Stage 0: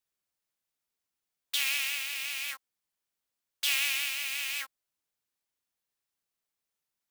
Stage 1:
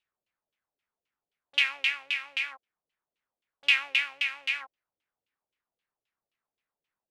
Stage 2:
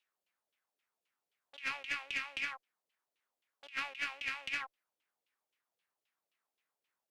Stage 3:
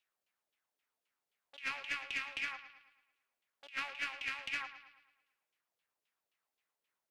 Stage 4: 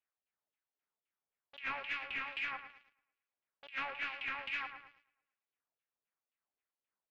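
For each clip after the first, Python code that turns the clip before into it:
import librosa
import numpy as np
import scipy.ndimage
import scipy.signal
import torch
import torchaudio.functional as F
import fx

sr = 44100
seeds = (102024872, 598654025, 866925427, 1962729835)

y1 = fx.high_shelf(x, sr, hz=4500.0, db=10.5)
y1 = fx.filter_lfo_lowpass(y1, sr, shape='saw_down', hz=3.8, low_hz=430.0, high_hz=3100.0, q=2.9)
y2 = fx.highpass(y1, sr, hz=400.0, slope=6)
y2 = fx.over_compress(y2, sr, threshold_db=-32.0, ratio=-0.5)
y2 = fx.tube_stage(y2, sr, drive_db=21.0, bias=0.3)
y2 = y2 * 10.0 ** (-3.5 / 20.0)
y3 = fx.echo_bbd(y2, sr, ms=110, stages=4096, feedback_pct=48, wet_db=-12.5)
y3 = y3 * 10.0 ** (-1.0 / 20.0)
y4 = fx.leveller(y3, sr, passes=2)
y4 = fx.harmonic_tremolo(y4, sr, hz=2.3, depth_pct=50, crossover_hz=2000.0)
y4 = fx.air_absorb(y4, sr, metres=340.0)
y4 = y4 * 10.0 ** (1.0 / 20.0)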